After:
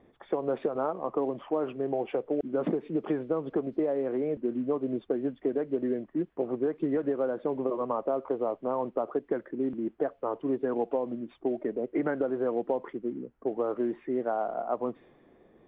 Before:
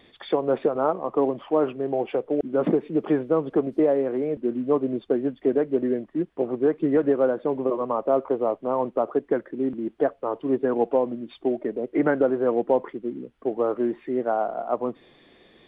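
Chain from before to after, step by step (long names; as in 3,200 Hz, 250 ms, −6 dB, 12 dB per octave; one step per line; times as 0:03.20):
low-pass that shuts in the quiet parts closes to 1,000 Hz, open at −16 dBFS
downward compressor, threshold −22 dBFS, peak gain reduction 7.5 dB
level −2.5 dB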